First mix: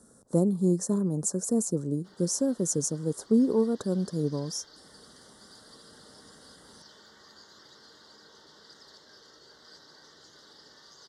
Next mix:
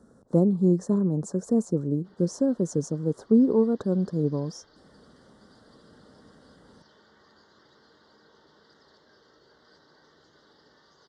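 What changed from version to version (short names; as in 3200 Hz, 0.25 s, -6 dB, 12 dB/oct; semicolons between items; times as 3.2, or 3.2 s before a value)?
speech +4.0 dB; master: add tape spacing loss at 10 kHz 23 dB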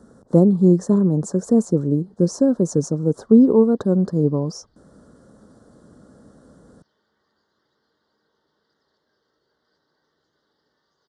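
speech +7.0 dB; background -12.0 dB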